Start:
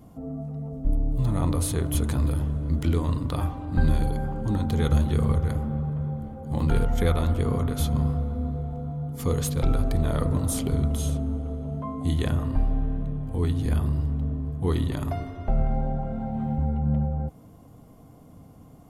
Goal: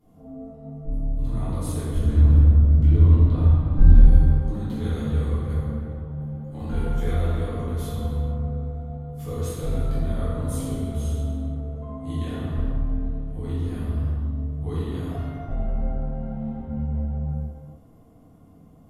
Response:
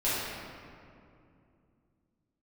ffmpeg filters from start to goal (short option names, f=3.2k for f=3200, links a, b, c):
-filter_complex "[0:a]asettb=1/sr,asplit=3[a][b][c];[a]atrim=end=1.914[d];[b]atrim=start=1.91:end=4.05,asetpts=PTS-STARTPTS,afade=t=in:d=0.004:c=qsin,afade=t=out:st=2.136:d=0.004:c=qsin,aemphasis=mode=reproduction:type=bsi[e];[c]atrim=start=4.046[f];[d][e]acrossfade=d=0.004:c1=hsin:c2=qsin[g];[g][f]acrossfade=d=0.004:c1=qsin:c2=hsin[h];[1:a]atrim=start_sample=2205,afade=t=out:st=0.42:d=0.01,atrim=end_sample=18963,asetrate=32634,aresample=44100[i];[h][i]afir=irnorm=-1:irlink=0,volume=-16.5dB"